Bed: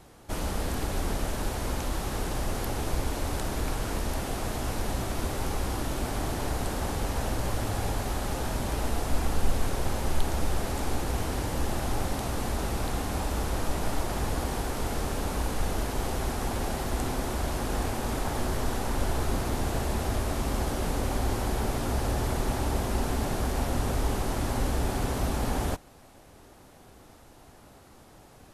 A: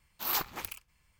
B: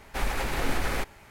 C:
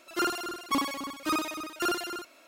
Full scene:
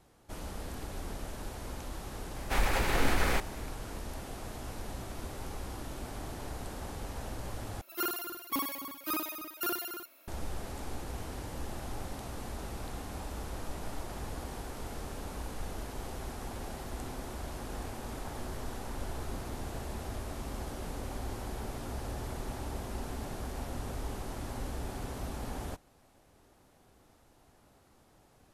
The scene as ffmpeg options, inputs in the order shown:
ffmpeg -i bed.wav -i cue0.wav -i cue1.wav -i cue2.wav -filter_complex "[0:a]volume=-10.5dB[link_01];[2:a]acontrast=76[link_02];[3:a]aexciter=amount=6:drive=8:freq=11000[link_03];[link_01]asplit=2[link_04][link_05];[link_04]atrim=end=7.814[link_06];[link_03]atrim=end=2.47,asetpts=PTS-STARTPTS,volume=-7dB[link_07];[link_05]atrim=start=10.276[link_08];[link_02]atrim=end=1.3,asetpts=PTS-STARTPTS,volume=-6.5dB,afade=type=in:duration=0.004:curve=hsin,afade=type=out:start_time=1.296:duration=0.004:curve=hsin,adelay=2360[link_09];[link_06][link_07]acrossfade=duration=0.004:curve1=hsin:curve2=hsin[link_10];[link_10][link_08]acrossfade=duration=0.004:curve1=hsin:curve2=hsin[link_11];[link_11][link_09]amix=inputs=2:normalize=0" out.wav

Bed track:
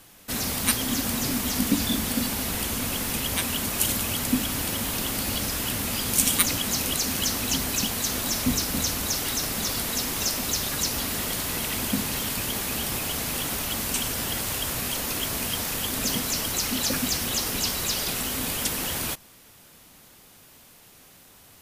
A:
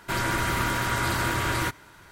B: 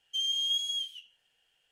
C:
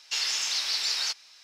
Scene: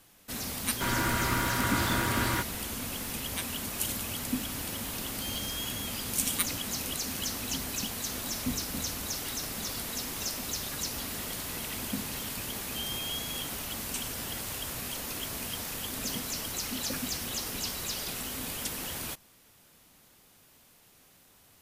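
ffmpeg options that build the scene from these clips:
ffmpeg -i bed.wav -i cue0.wav -i cue1.wav -filter_complex "[2:a]asplit=2[link_01][link_02];[0:a]volume=-8dB[link_03];[link_01]aemphasis=mode=production:type=75kf[link_04];[1:a]atrim=end=2.11,asetpts=PTS-STARTPTS,volume=-3.5dB,afade=type=in:duration=0.004:curve=hsin,afade=type=out:start_time=2.106:duration=0.004:curve=hsin,adelay=720[link_05];[link_04]atrim=end=1.71,asetpts=PTS-STARTPTS,volume=-16.5dB,afade=type=in:duration=0.004:curve=hsin,afade=type=out:start_time=1.706:duration=0.004:curve=hsin,adelay=5070[link_06];[link_02]atrim=end=1.71,asetpts=PTS-STARTPTS,volume=-9dB,afade=type=in:duration=0.004:curve=hsin,afade=type=out:start_time=1.706:duration=0.004:curve=hsin,adelay=12610[link_07];[link_03][link_05][link_06][link_07]amix=inputs=4:normalize=0" out.wav

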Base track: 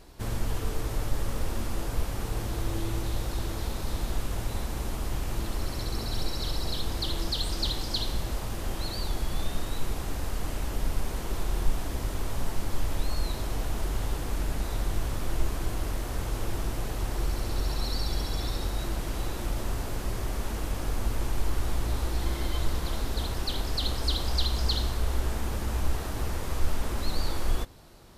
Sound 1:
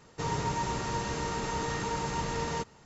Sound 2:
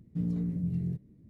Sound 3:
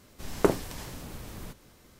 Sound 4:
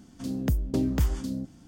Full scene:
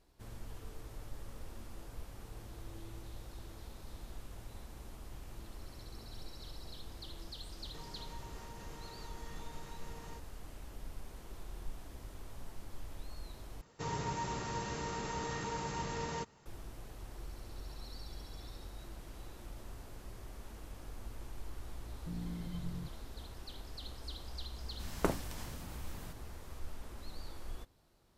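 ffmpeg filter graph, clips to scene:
ffmpeg -i bed.wav -i cue0.wav -i cue1.wav -i cue2.wav -filter_complex "[1:a]asplit=2[link_01][link_02];[0:a]volume=-17.5dB[link_03];[link_01]acompressor=threshold=-38dB:ratio=6:attack=3.2:release=140:knee=1:detection=peak[link_04];[3:a]equalizer=frequency=400:width_type=o:width=0.74:gain=-7[link_05];[link_03]asplit=2[link_06][link_07];[link_06]atrim=end=13.614[link_08];[link_02]atrim=end=2.85,asetpts=PTS-STARTPTS,volume=-6.5dB[link_09];[link_07]atrim=start=16.456[link_10];[link_04]atrim=end=2.85,asetpts=PTS-STARTPTS,volume=-10.5dB,afade=type=in:duration=0.004:curve=hsin,afade=type=out:start_time=2.846:duration=0.004:curve=hsin,adelay=7560[link_11];[2:a]atrim=end=1.29,asetpts=PTS-STARTPTS,volume=-11.5dB,afade=type=in:duration=0.004:curve=hsin,afade=type=out:start_time=1.286:duration=0.004:curve=hsin,adelay=21910[link_12];[link_05]atrim=end=1.99,asetpts=PTS-STARTPTS,volume=-6dB,afade=type=in:duration=0.004:curve=hsin,afade=type=out:start_time=1.986:duration=0.004:curve=hsin,adelay=24600[link_13];[link_08][link_09]acrossfade=duration=0.004:curve1=hsin:curve2=hsin[link_14];[link_14][link_10]acrossfade=duration=0.004:curve1=hsin:curve2=hsin[link_15];[link_15][link_11][link_12][link_13]amix=inputs=4:normalize=0" out.wav

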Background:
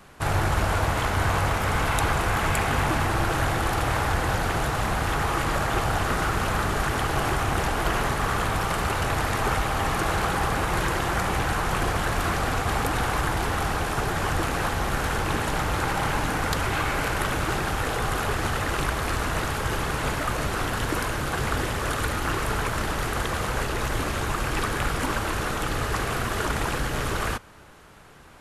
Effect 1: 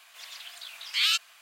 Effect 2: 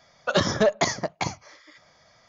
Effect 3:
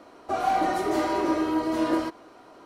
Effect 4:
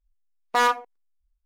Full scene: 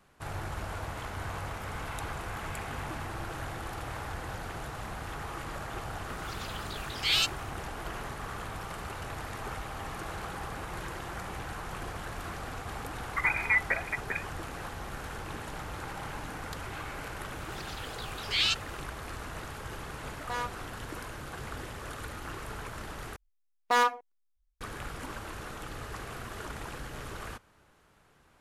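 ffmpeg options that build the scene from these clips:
ffmpeg -i bed.wav -i cue0.wav -i cue1.wav -i cue2.wav -i cue3.wav -filter_complex "[1:a]asplit=2[link_01][link_02];[4:a]asplit=2[link_03][link_04];[0:a]volume=-14dB[link_05];[2:a]lowpass=frequency=2200:width_type=q:width=0.5098,lowpass=frequency=2200:width_type=q:width=0.6013,lowpass=frequency=2200:width_type=q:width=0.9,lowpass=frequency=2200:width_type=q:width=2.563,afreqshift=-2600[link_06];[link_02]acrossover=split=7800[link_07][link_08];[link_08]acompressor=threshold=-54dB:ratio=4:attack=1:release=60[link_09];[link_07][link_09]amix=inputs=2:normalize=0[link_10];[link_03]aresample=32000,aresample=44100[link_11];[link_05]asplit=2[link_12][link_13];[link_12]atrim=end=23.164[link_14];[link_04]atrim=end=1.45,asetpts=PTS-STARTPTS,volume=-4dB[link_15];[link_13]atrim=start=24.606[link_16];[link_01]atrim=end=1.41,asetpts=PTS-STARTPTS,volume=-2dB,afade=type=in:duration=0.004:curve=hsin,afade=type=out:start_time=1.406:duration=0.004:curve=hsin,adelay=6090[link_17];[link_06]atrim=end=2.28,asetpts=PTS-STARTPTS,volume=-6dB,afade=type=in:duration=0.004:curve=hsin,afade=type=out:start_time=2.276:duration=0.004:curve=hsin,adelay=12890[link_18];[link_10]atrim=end=1.41,asetpts=PTS-STARTPTS,volume=-2.5dB,afade=type=in:duration=0.004:curve=hsin,afade=type=out:start_time=1.406:duration=0.004:curve=hsin,adelay=17370[link_19];[link_11]atrim=end=1.45,asetpts=PTS-STARTPTS,volume=-14.5dB,afade=type=in:duration=0.004:curve=hsin,afade=type=out:start_time=1.446:duration=0.004:curve=hsin,adelay=19750[link_20];[link_14][link_15]acrossfade=duration=0.004:curve1=hsin:curve2=hsin[link_21];[link_21][link_16]acrossfade=duration=0.004:curve1=hsin:curve2=hsin[link_22];[link_22][link_17][link_18][link_19][link_20]amix=inputs=5:normalize=0" out.wav

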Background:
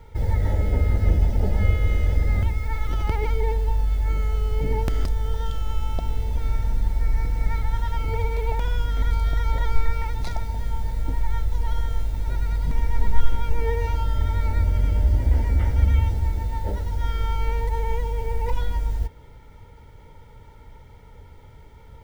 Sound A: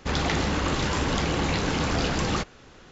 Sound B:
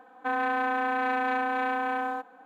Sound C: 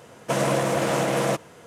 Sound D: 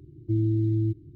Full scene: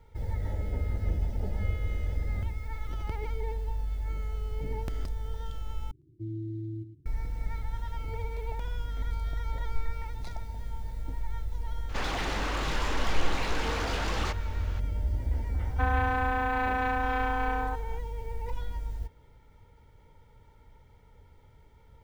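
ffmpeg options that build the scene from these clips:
ffmpeg -i bed.wav -i cue0.wav -i cue1.wav -i cue2.wav -i cue3.wav -filter_complex "[0:a]volume=-10.5dB[link_01];[4:a]aecho=1:1:107:0.335[link_02];[1:a]asplit=2[link_03][link_04];[link_04]highpass=frequency=720:poles=1,volume=27dB,asoftclip=type=tanh:threshold=-10dB[link_05];[link_03][link_05]amix=inputs=2:normalize=0,lowpass=frequency=3000:poles=1,volume=-6dB[link_06];[link_01]asplit=2[link_07][link_08];[link_07]atrim=end=5.914[link_09];[link_02]atrim=end=1.15,asetpts=PTS-STARTPTS,volume=-12.5dB[link_10];[link_08]atrim=start=7.056[link_11];[link_06]atrim=end=2.91,asetpts=PTS-STARTPTS,volume=-15dB,afade=type=in:duration=0.004:curve=hsin,afade=type=out:start_time=2.906:duration=0.004:curve=hsin,adelay=11890[link_12];[2:a]atrim=end=2.45,asetpts=PTS-STARTPTS,volume=-1.5dB,afade=type=in:duration=0.004:curve=hsin,afade=type=out:start_time=2.446:duration=0.004:curve=hsin,adelay=15540[link_13];[link_09][link_10]acrossfade=duration=0.004:curve1=hsin:curve2=hsin[link_14];[link_14][link_11]acrossfade=duration=0.004:curve1=hsin:curve2=hsin[link_15];[link_15][link_12][link_13]amix=inputs=3:normalize=0" out.wav

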